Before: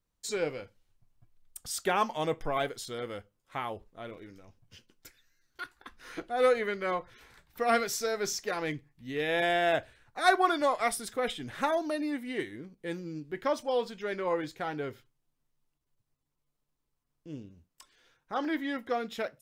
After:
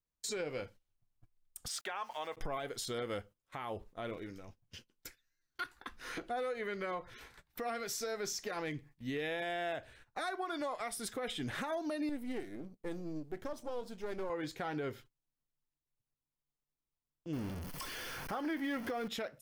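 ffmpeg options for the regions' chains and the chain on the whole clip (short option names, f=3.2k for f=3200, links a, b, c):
-filter_complex "[0:a]asettb=1/sr,asplit=3[a][b][c];[a]atrim=end=1.684[d];[b]atrim=start=1.68:end=2.37,asetpts=PTS-STARTPTS,afade=t=in:d=0.004:c=qsin,afade=t=out:st=0.686:d=0.004:c=qsin,highpass=890,aemphasis=mode=reproduction:type=bsi,aeval=exprs='val(0)*gte(abs(val(0)),0.00188)':c=same[e];[c]atrim=start=2.366[f];[d][e]acrossfade=d=0.004:c1=hsin:c2=qsin[g];[g][f]acrossfade=d=0.004:c1=qsin:c2=hsin,asettb=1/sr,asplit=3[h][i][j];[h]atrim=end=12.094[k];[i]atrim=start=12.09:end=14.3,asetpts=PTS-STARTPTS,afade=t=in:d=0.004:c=qsin,afade=t=out:st=2.206:d=0.004:c=qsin,aeval=exprs='if(lt(val(0),0),0.251*val(0),val(0))':c=same,equalizer=f=2.3k:w=0.48:g=-9[l];[j]atrim=start=14.296[m];[k][l]acrossfade=d=0.004:c1=hsin:c2=qsin[n];[n][m]acrossfade=d=0.004:c1=qsin:c2=hsin,asettb=1/sr,asplit=3[o][p][q];[o]atrim=end=17.334[r];[p]atrim=start=17.33:end=19.08,asetpts=PTS-STARTPTS,afade=t=in:d=0.004:c=qsin,afade=t=out:st=1.746:d=0.004:c=qsin,aeval=exprs='val(0)+0.5*0.00944*sgn(val(0))':c=same,equalizer=f=7.4k:w=4.4:g=-10,bandreject=f=3.8k:w=7.1[s];[q]atrim=start=19.076[t];[r][s]acrossfade=d=0.004:c1=hsin:c2=qsin[u];[u][t]acrossfade=d=0.004:c1=qsin:c2=hsin,agate=range=-15dB:threshold=-56dB:ratio=16:detection=peak,acompressor=threshold=-34dB:ratio=6,alimiter=level_in=8.5dB:limit=-24dB:level=0:latency=1:release=116,volume=-8.5dB,volume=3dB"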